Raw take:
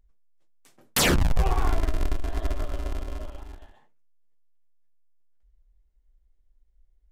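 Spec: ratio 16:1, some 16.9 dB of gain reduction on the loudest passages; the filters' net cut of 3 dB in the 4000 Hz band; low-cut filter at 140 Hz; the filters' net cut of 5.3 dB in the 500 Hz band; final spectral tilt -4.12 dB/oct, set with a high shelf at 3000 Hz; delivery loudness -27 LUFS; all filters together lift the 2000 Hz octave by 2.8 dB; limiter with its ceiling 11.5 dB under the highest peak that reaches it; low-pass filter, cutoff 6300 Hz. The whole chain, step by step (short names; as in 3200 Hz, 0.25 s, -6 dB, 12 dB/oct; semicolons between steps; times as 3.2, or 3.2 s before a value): HPF 140 Hz; LPF 6300 Hz; bell 500 Hz -7.5 dB; bell 2000 Hz +4.5 dB; high shelf 3000 Hz +5 dB; bell 4000 Hz -9 dB; compressor 16:1, threshold -35 dBFS; gain +17.5 dB; limiter -13 dBFS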